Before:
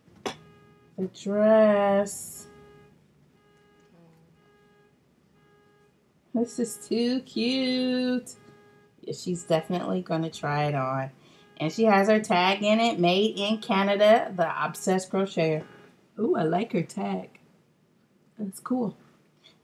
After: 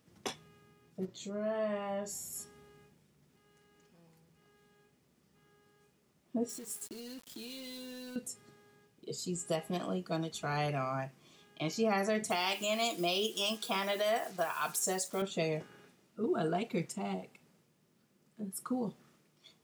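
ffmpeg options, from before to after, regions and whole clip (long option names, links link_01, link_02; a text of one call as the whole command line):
ffmpeg -i in.wav -filter_complex "[0:a]asettb=1/sr,asplit=3[link_01][link_02][link_03];[link_01]atrim=end=1.054[link_04];[link_02]atrim=start=1.05:end=2.33,asetpts=PTS-STARTPTS,afade=type=in:duration=0.004:curve=qsin,afade=type=out:start_time=1.276:duration=0.004:curve=qsin,equalizer=frequency=10000:width_type=o:width=0.38:gain=-13.5,acompressor=threshold=-39dB:ratio=1.5:attack=3.2:release=140:knee=1:detection=peak,asplit=2[link_05][link_06];[link_06]adelay=34,volume=-9dB[link_07];[link_05][link_07]amix=inputs=2:normalize=0,atrim=end_sample=56448[link_08];[link_03]atrim=start=2.326[link_09];[link_04][link_08]acrossfade=duration=0.004:curve1=hsin:curve2=qsin[link_10];[link_10][link_09]acrossfade=duration=0.004:curve1=qsin:curve2=hsin,asettb=1/sr,asplit=3[link_11][link_12][link_13];[link_11]atrim=end=6.494[link_14];[link_12]atrim=start=6.49:end=8.16,asetpts=PTS-STARTPTS,afade=type=in:duration=0.004:curve=qsin,afade=type=out:start_time=1.666:duration=0.004:curve=qsin,acompressor=threshold=-35dB:ratio=12:attack=3.2:release=140:knee=1:detection=peak,aeval=exprs='val(0)*gte(abs(val(0)),0.00596)':channel_layout=same[link_15];[link_13]atrim=start=8.156[link_16];[link_14][link_15]acrossfade=duration=0.004:curve1=hsin:curve2=qsin[link_17];[link_17][link_16]acrossfade=duration=0.004:curve1=qsin:curve2=hsin,asettb=1/sr,asplit=3[link_18][link_19][link_20];[link_18]atrim=end=12.304[link_21];[link_19]atrim=start=12.3:end=15.22,asetpts=PTS-STARTPTS,afade=type=in:duration=0.004:curve=qsin,afade=type=out:start_time=2.916:duration=0.004:curve=qsin,acrusher=bits=7:mix=0:aa=0.5,bass=frequency=250:gain=-9,treble=frequency=4000:gain=5[link_22];[link_20]atrim=start=15.216[link_23];[link_21][link_22]acrossfade=duration=0.004:curve1=hsin:curve2=qsin[link_24];[link_24][link_23]acrossfade=duration=0.004:curve1=qsin:curve2=hsin,highshelf=frequency=4300:gain=10.5,alimiter=limit=-14dB:level=0:latency=1:release=145,volume=-8dB" out.wav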